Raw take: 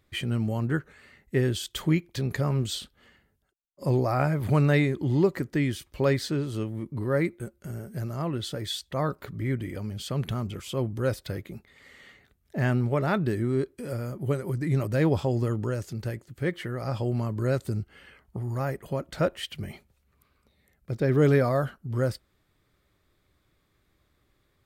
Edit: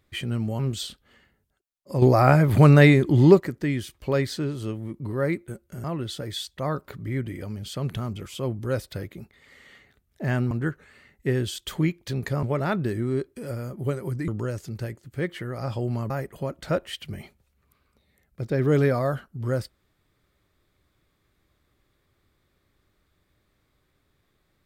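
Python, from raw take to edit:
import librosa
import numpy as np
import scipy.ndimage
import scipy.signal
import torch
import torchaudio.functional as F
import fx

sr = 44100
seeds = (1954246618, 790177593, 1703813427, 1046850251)

y = fx.edit(x, sr, fx.move(start_s=0.59, length_s=1.92, to_s=12.85),
    fx.clip_gain(start_s=3.94, length_s=1.38, db=8.0),
    fx.cut(start_s=7.76, length_s=0.42),
    fx.cut(start_s=14.7, length_s=0.82),
    fx.cut(start_s=17.34, length_s=1.26), tone=tone)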